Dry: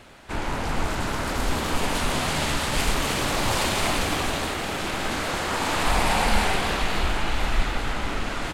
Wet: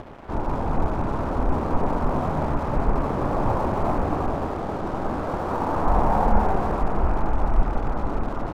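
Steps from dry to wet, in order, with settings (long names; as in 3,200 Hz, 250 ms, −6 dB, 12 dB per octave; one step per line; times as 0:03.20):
loose part that buzzes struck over −30 dBFS, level −15 dBFS
low-pass filter 1,100 Hz 24 dB per octave
upward compression, threshold −31 dBFS
dead-zone distortion −46 dBFS
level +4 dB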